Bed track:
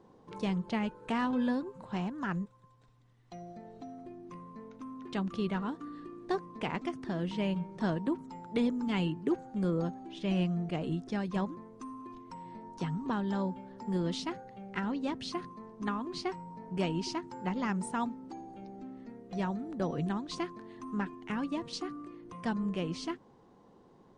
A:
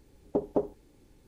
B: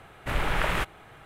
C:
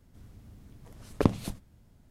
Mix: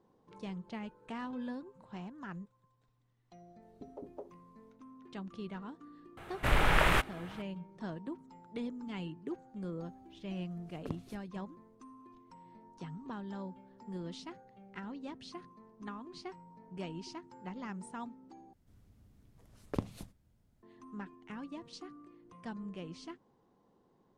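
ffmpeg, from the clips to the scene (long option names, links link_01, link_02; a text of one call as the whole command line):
ffmpeg -i bed.wav -i cue0.wav -i cue1.wav -i cue2.wav -filter_complex "[3:a]asplit=2[link_01][link_02];[0:a]volume=-10dB[link_03];[1:a]acrossover=split=350[link_04][link_05];[link_05]adelay=160[link_06];[link_04][link_06]amix=inputs=2:normalize=0[link_07];[link_03]asplit=2[link_08][link_09];[link_08]atrim=end=18.534[link_10];[link_02]atrim=end=2.1,asetpts=PTS-STARTPTS,volume=-11.5dB[link_11];[link_09]atrim=start=20.626[link_12];[link_07]atrim=end=1.27,asetpts=PTS-STARTPTS,volume=-16dB,afade=type=in:duration=0.004:curve=hsin,afade=type=out:start_time=1.266:duration=0.004:curve=hsin,adelay=3460[link_13];[2:a]atrim=end=1.25,asetpts=PTS-STARTPTS,afade=type=in:duration=0.004:curve=hsin,afade=type=out:start_time=1.246:duration=0.004:curve=hsin,adelay=6170[link_14];[link_01]atrim=end=2.1,asetpts=PTS-STARTPTS,volume=-18dB,afade=type=in:duration=0.004:curve=hsin,afade=type=out:start_time=2.096:duration=0.004:curve=hsin,adelay=9650[link_15];[link_10][link_11]acrossfade=duration=0.004:curve1=hsin:curve2=hsin[link_16];[link_16][link_12]acrossfade=duration=0.004:curve1=hsin:curve2=hsin[link_17];[link_17][link_13][link_14][link_15]amix=inputs=4:normalize=0" out.wav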